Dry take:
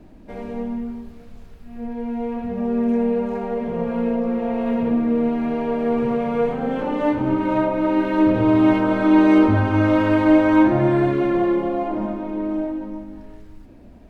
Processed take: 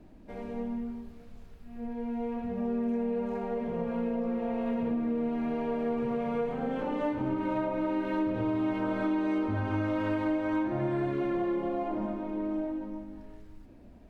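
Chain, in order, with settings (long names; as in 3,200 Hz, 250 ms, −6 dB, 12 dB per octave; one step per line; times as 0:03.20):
downward compressor, threshold −19 dBFS, peak gain reduction 9.5 dB
level −7.5 dB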